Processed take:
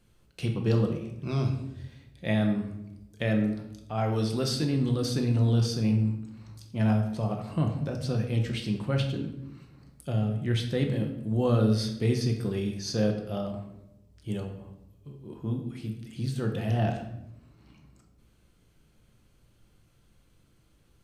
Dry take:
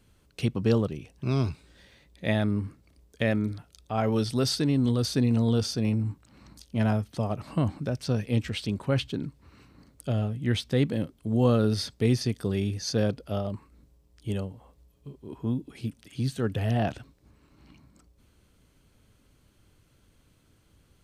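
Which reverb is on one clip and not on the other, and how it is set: simulated room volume 270 m³, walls mixed, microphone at 0.84 m; trim -4 dB

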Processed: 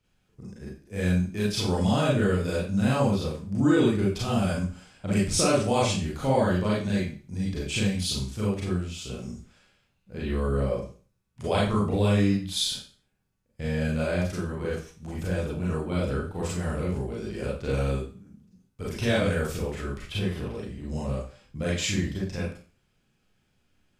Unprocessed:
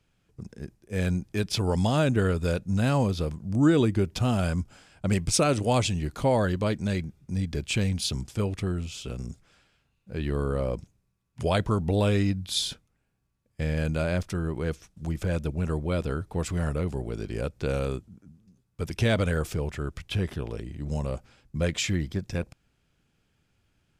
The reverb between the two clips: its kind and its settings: Schroeder reverb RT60 0.39 s, combs from 30 ms, DRR -6 dB; trim -6 dB

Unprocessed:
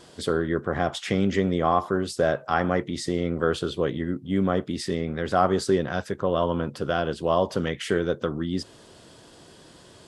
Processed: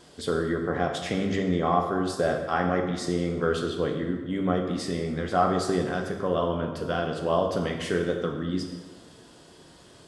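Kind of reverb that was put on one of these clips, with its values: plate-style reverb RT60 1.3 s, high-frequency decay 0.75×, DRR 2.5 dB; trim -3.5 dB

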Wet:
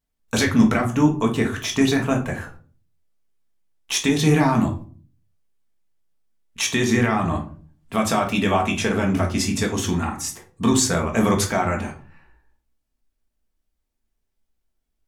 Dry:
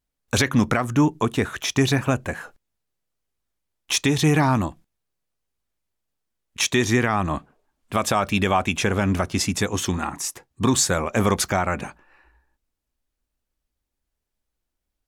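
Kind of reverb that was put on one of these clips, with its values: simulated room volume 270 m³, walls furnished, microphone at 1.6 m; trim -2.5 dB

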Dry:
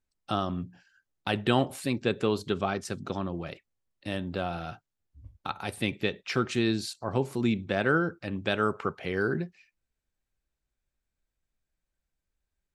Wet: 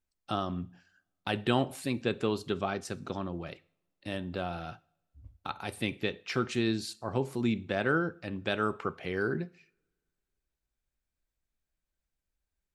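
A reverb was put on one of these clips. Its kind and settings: two-slope reverb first 0.49 s, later 2 s, from -27 dB, DRR 18 dB; trim -3 dB

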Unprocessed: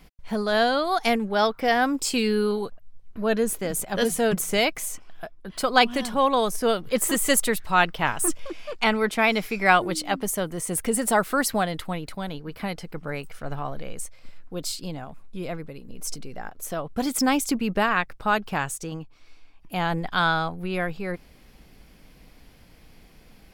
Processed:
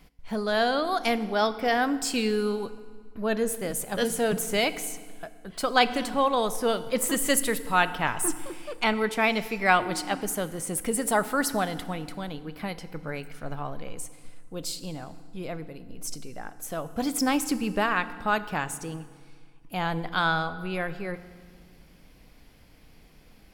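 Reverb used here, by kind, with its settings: FDN reverb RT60 1.7 s, low-frequency decay 1.45×, high-frequency decay 0.8×, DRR 12.5 dB; trim -3 dB

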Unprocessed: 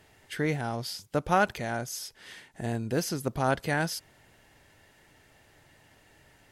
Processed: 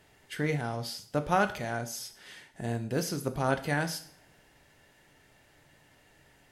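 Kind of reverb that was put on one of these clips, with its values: two-slope reverb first 0.49 s, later 2.1 s, from -27 dB, DRR 7.5 dB; trim -2.5 dB

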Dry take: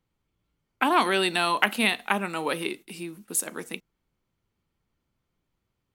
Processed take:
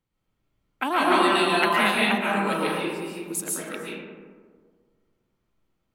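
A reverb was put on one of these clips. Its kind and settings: algorithmic reverb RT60 1.7 s, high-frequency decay 0.35×, pre-delay 100 ms, DRR -6 dB; trim -4 dB

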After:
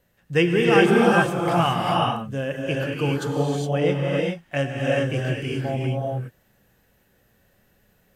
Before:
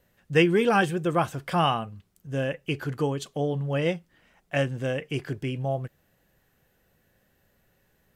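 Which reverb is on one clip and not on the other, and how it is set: gated-style reverb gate 440 ms rising, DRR -3 dB

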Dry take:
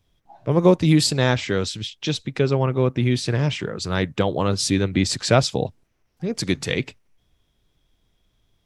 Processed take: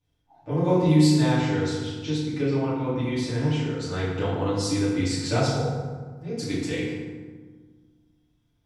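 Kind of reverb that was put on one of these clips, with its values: FDN reverb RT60 1.5 s, low-frequency decay 1.45×, high-frequency decay 0.55×, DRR -10 dB; trim -16 dB

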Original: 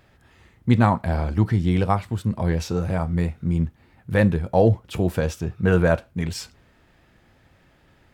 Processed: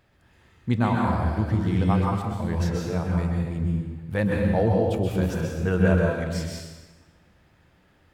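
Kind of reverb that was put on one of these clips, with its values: plate-style reverb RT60 1.3 s, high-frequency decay 0.8×, pre-delay 115 ms, DRR -1.5 dB; trim -6.5 dB

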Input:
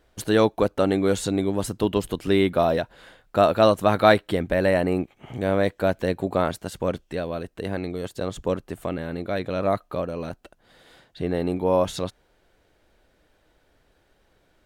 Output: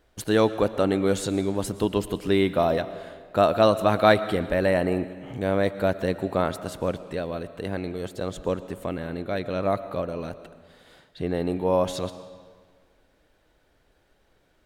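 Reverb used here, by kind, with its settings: algorithmic reverb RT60 1.7 s, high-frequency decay 0.85×, pre-delay 75 ms, DRR 13.5 dB; trim -1.5 dB

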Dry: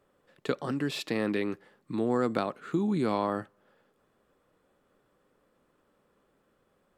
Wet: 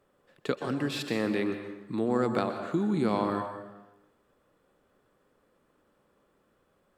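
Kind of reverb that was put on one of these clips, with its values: plate-style reverb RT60 1 s, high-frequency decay 0.75×, pre-delay 110 ms, DRR 7 dB

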